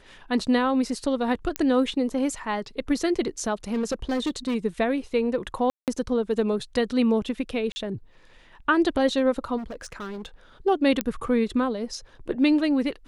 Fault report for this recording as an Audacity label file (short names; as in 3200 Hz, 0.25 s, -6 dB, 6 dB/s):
1.560000	1.560000	pop -10 dBFS
3.730000	4.560000	clipped -21.5 dBFS
5.700000	5.880000	gap 0.178 s
7.720000	7.760000	gap 40 ms
9.570000	10.260000	clipped -31.5 dBFS
11.010000	11.010000	pop -7 dBFS